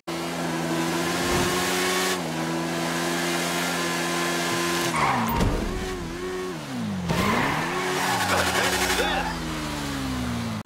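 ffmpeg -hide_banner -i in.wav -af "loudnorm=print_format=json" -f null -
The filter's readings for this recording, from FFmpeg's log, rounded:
"input_i" : "-24.7",
"input_tp" : "-8.8",
"input_lra" : "1.8",
"input_thresh" : "-34.7",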